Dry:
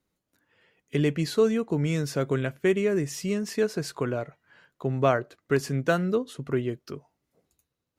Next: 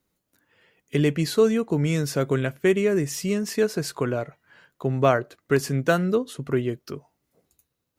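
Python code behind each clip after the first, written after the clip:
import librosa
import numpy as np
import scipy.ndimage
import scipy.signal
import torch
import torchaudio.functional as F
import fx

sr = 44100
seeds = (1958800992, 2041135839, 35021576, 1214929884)

y = fx.high_shelf(x, sr, hz=11000.0, db=8.0)
y = F.gain(torch.from_numpy(y), 3.0).numpy()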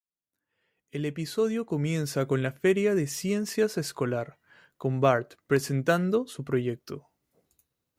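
y = fx.fade_in_head(x, sr, length_s=2.35)
y = F.gain(torch.from_numpy(y), -3.0).numpy()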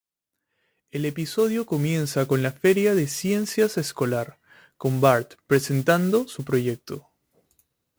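y = fx.mod_noise(x, sr, seeds[0], snr_db=21)
y = F.gain(torch.from_numpy(y), 4.5).numpy()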